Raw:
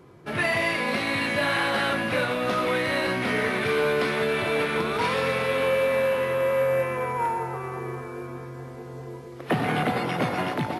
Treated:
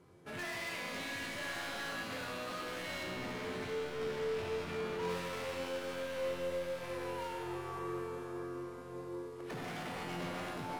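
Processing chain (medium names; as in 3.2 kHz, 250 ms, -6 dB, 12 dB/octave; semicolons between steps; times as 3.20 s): CVSD coder 64 kbps; 3.03–5.09 s: tilt EQ -2.5 dB/octave; overload inside the chain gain 29.5 dB; feedback comb 88 Hz, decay 2 s, mix 90%; echo that smears into a reverb 713 ms, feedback 45%, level -13.5 dB; trim +5.5 dB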